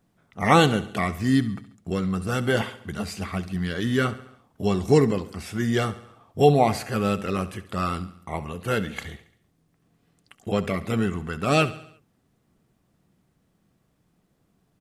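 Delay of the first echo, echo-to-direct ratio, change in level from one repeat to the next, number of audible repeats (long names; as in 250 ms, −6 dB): 69 ms, −14.5 dB, −5.5 dB, 4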